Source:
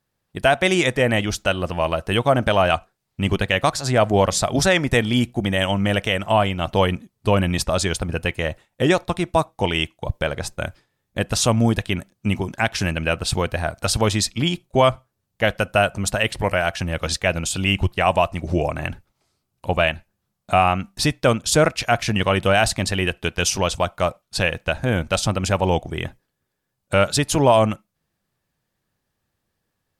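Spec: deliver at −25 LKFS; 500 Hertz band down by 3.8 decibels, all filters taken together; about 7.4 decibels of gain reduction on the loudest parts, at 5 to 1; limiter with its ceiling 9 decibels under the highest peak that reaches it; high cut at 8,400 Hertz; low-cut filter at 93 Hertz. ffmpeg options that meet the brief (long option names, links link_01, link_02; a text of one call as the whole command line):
ffmpeg -i in.wav -af "highpass=93,lowpass=8400,equalizer=frequency=500:width_type=o:gain=-5,acompressor=threshold=-22dB:ratio=5,volume=4dB,alimiter=limit=-12dB:level=0:latency=1" out.wav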